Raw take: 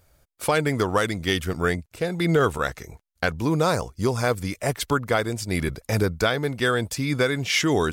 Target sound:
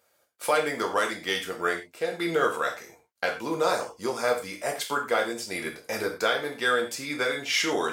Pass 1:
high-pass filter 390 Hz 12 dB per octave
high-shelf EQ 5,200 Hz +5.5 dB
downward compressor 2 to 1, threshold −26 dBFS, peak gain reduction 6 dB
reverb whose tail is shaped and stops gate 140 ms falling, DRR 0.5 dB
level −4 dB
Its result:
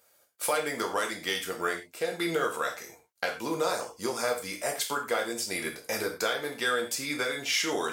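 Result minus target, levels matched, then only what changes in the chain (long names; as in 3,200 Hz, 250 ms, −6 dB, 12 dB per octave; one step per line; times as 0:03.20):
downward compressor: peak gain reduction +6 dB; 8,000 Hz band +5.0 dB
change: high-shelf EQ 5,200 Hz −2 dB
remove: downward compressor 2 to 1, threshold −26 dBFS, peak gain reduction 6 dB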